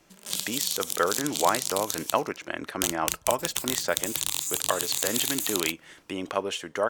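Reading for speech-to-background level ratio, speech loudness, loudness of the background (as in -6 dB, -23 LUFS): -2.0 dB, -30.5 LUFS, -28.5 LUFS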